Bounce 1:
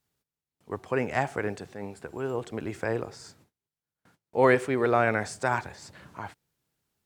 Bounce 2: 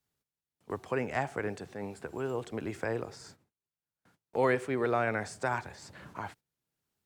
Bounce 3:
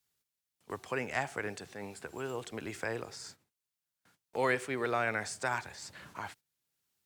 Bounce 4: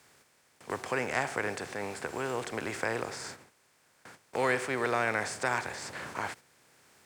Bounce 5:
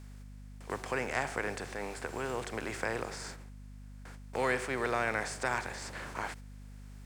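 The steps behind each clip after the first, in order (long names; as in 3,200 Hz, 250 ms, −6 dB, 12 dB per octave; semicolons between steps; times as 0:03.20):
noise gate −52 dBFS, range −12 dB; multiband upward and downward compressor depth 40%; level −4.5 dB
tilt shelving filter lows −5.5 dB, about 1,400 Hz
compressor on every frequency bin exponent 0.6
mains hum 50 Hz, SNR 11 dB; level −2.5 dB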